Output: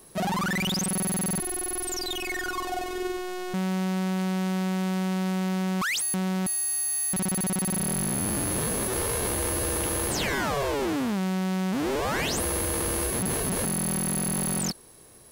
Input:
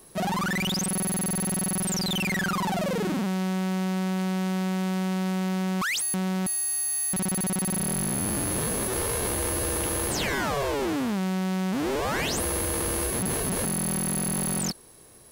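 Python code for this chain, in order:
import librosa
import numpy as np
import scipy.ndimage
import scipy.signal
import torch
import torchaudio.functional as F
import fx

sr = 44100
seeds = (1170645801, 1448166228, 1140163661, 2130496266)

y = fx.robotise(x, sr, hz=364.0, at=(1.39, 3.54))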